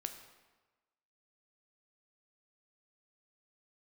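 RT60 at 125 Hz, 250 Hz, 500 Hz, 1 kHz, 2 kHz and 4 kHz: 1.2 s, 1.2 s, 1.2 s, 1.3 s, 1.1 s, 0.95 s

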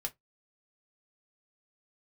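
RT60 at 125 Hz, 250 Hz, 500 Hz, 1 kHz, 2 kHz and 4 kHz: 0.20 s, 0.15 s, 0.15 s, 0.15 s, 0.15 s, 0.10 s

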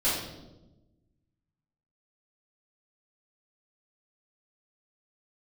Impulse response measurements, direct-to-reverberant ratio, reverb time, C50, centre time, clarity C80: -12.0 dB, 1.0 s, 1.0 dB, 62 ms, 4.5 dB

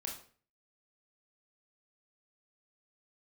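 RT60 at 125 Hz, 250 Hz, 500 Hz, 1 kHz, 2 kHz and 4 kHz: 0.60 s, 0.50 s, 0.50 s, 0.40 s, 0.40 s, 0.35 s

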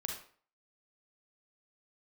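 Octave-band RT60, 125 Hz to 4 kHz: 0.40 s, 0.45 s, 0.45 s, 0.50 s, 0.45 s, 0.35 s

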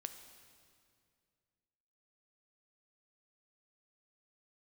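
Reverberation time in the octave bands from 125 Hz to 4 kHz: 2.7 s, 2.6 s, 2.4 s, 2.1 s, 2.0 s, 1.9 s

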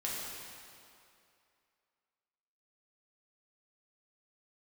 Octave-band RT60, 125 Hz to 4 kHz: 2.1 s, 2.3 s, 2.5 s, 2.6 s, 2.3 s, 2.1 s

